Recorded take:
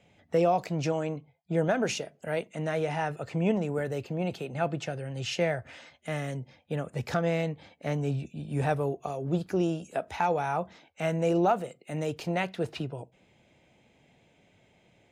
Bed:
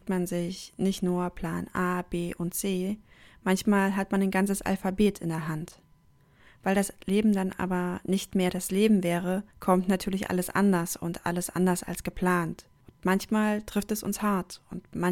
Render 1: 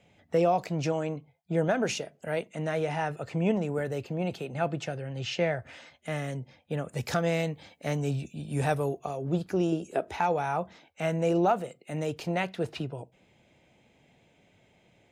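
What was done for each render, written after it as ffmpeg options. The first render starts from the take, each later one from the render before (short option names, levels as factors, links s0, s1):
-filter_complex "[0:a]asettb=1/sr,asplit=3[s0][s1][s2];[s0]atrim=end=4.974[s3];[s1]atrim=start=4.97:end=5.6,asetpts=PTS-STARTPTS,afade=t=in:d=0.004:c=qsin,afade=t=out:st=0.626:d=0.004:c=qsin,lowpass=5700[s4];[s2]atrim=start=5.596[s5];[s3][s4]acrossfade=d=0.004:c1=hsin:c2=qsin[s6];[s6][s5]acrossfade=d=0.004:c1=qsin:c2=hsin,asettb=1/sr,asplit=3[s7][s8][s9];[s7]atrim=end=6.894[s10];[s8]atrim=start=6.89:end=8.99,asetpts=PTS-STARTPTS,afade=t=in:d=0.004:c=qsin,afade=t=out:st=2.096:d=0.004:c=qsin,highshelf=f=4200:g=9.5[s11];[s9]atrim=start=8.986[s12];[s10][s11]acrossfade=d=0.004:c1=hsin:c2=qsin[s13];[s13][s12]acrossfade=d=0.004:c1=qsin:c2=hsin,asettb=1/sr,asplit=3[s14][s15][s16];[s14]atrim=end=9.724[s17];[s15]atrim=start=9.72:end=10.2,asetpts=PTS-STARTPTS,afade=t=in:d=0.004:c=qsin,afade=t=out:st=0.476:d=0.004:c=qsin,equalizer=f=370:t=o:w=0.57:g=12[s18];[s16]atrim=start=10.196[s19];[s17][s18]acrossfade=d=0.004:c1=hsin:c2=qsin[s20];[s20][s19]acrossfade=d=0.004:c1=qsin:c2=hsin"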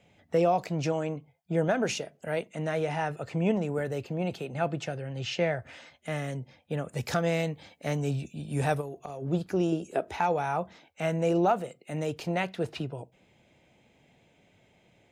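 -filter_complex "[0:a]asettb=1/sr,asplit=3[s0][s1][s2];[s0]atrim=end=1.044[s3];[s1]atrim=start=1.04:end=1.68,asetpts=PTS-STARTPTS,afade=t=in:d=0.004:c=qsin,afade=t=out:st=0.636:d=0.004:c=qsin,bandreject=f=4000:w=12[s4];[s2]atrim=start=1.676[s5];[s3][s4]acrossfade=d=0.004:c1=hsin:c2=qsin[s6];[s6][s5]acrossfade=d=0.004:c1=qsin:c2=hsin,asplit=3[s7][s8][s9];[s7]afade=t=out:st=8.8:d=0.02[s10];[s8]acompressor=threshold=0.02:ratio=6:attack=3.2:release=140:knee=1:detection=peak,afade=t=in:st=8.8:d=0.02,afade=t=out:st=9.21:d=0.02[s11];[s9]afade=t=in:st=9.21:d=0.02[s12];[s10][s11][s12]amix=inputs=3:normalize=0"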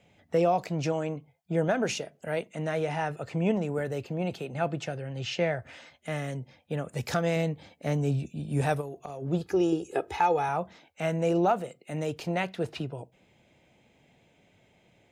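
-filter_complex "[0:a]asettb=1/sr,asplit=3[s0][s1][s2];[s0]atrim=end=7.364[s3];[s1]atrim=start=7.36:end=8.61,asetpts=PTS-STARTPTS,afade=t=in:d=0.004:c=qsin,afade=t=out:st=1.246:d=0.004:c=qsin,tiltshelf=f=780:g=3[s4];[s2]atrim=start=8.606[s5];[s3][s4]acrossfade=d=0.004:c1=hsin:c2=qsin[s6];[s6][s5]acrossfade=d=0.004:c1=qsin:c2=hsin,asettb=1/sr,asplit=3[s7][s8][s9];[s7]atrim=end=9.414[s10];[s8]atrim=start=9.41:end=10.49,asetpts=PTS-STARTPTS,afade=t=in:d=0.004:c=qsin,afade=t=out:st=1.076:d=0.004:c=qsin,aecho=1:1:2.4:0.65,atrim=end_sample=47628[s11];[s9]atrim=start=10.486[s12];[s10][s11]acrossfade=d=0.004:c1=hsin:c2=qsin[s13];[s13][s12]acrossfade=d=0.004:c1=qsin:c2=hsin"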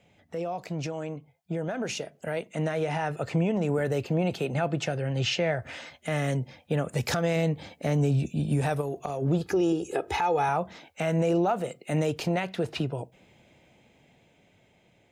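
-af "alimiter=level_in=1.06:limit=0.0631:level=0:latency=1:release=178,volume=0.944,dynaudnorm=f=570:g=9:m=2.37"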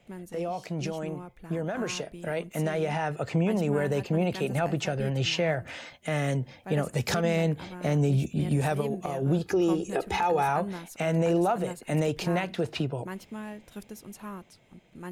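-filter_complex "[1:a]volume=0.211[s0];[0:a][s0]amix=inputs=2:normalize=0"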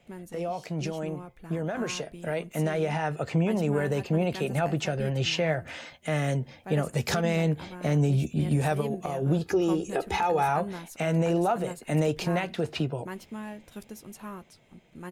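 -filter_complex "[0:a]asplit=2[s0][s1];[s1]adelay=13,volume=0.224[s2];[s0][s2]amix=inputs=2:normalize=0"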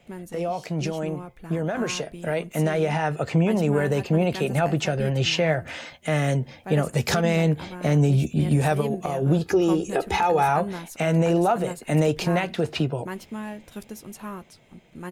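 -af "volume=1.68"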